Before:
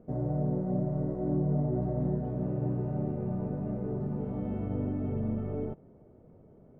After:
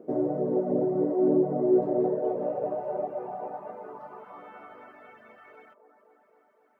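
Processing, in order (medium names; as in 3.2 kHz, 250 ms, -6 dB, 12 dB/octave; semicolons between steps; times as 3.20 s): feedback echo behind a band-pass 257 ms, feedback 74%, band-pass 500 Hz, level -5 dB; reverb removal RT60 0.67 s; high-pass sweep 350 Hz -> 1.7 kHz, 1.59–5.26 s; trim +5.5 dB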